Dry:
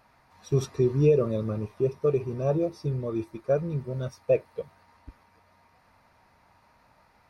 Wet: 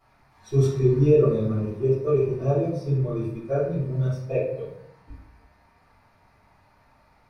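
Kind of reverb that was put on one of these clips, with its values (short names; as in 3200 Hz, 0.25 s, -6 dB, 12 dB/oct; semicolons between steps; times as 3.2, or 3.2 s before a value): shoebox room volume 130 m³, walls mixed, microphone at 3.2 m; gain -10.5 dB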